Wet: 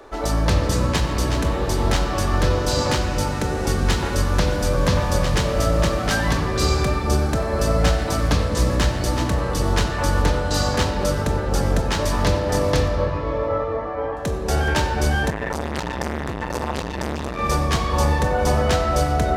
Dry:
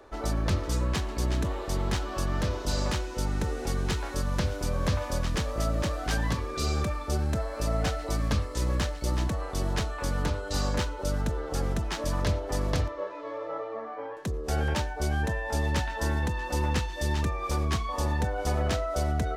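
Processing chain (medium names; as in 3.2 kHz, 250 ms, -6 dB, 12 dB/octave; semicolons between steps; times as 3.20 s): tone controls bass -3 dB, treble 0 dB; simulated room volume 150 m³, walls hard, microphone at 0.31 m; 15.30–17.39 s: transformer saturation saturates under 1 kHz; trim +8.5 dB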